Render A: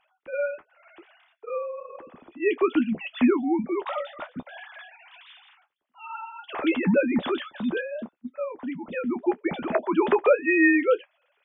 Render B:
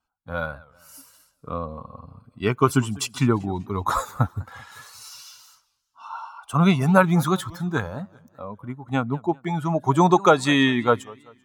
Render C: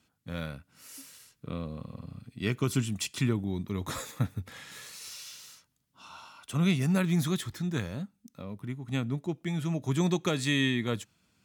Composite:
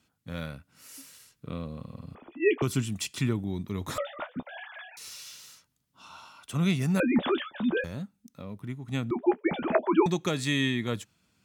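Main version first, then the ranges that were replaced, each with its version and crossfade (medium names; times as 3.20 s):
C
2.15–2.62 s: from A
3.98–4.97 s: from A
7.00–7.84 s: from A
9.11–10.06 s: from A
not used: B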